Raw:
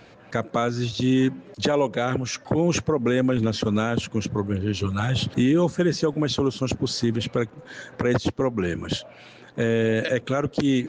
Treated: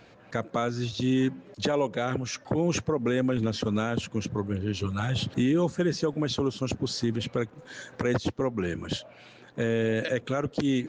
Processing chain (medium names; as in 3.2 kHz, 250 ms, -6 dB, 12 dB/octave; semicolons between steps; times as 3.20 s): 7.55–8.11 s: treble shelf 4.6 kHz +8.5 dB; trim -4.5 dB